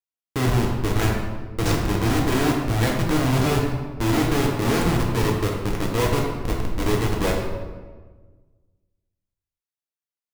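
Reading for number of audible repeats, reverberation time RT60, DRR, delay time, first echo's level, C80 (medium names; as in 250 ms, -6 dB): no echo, 1.4 s, -1.5 dB, no echo, no echo, 4.0 dB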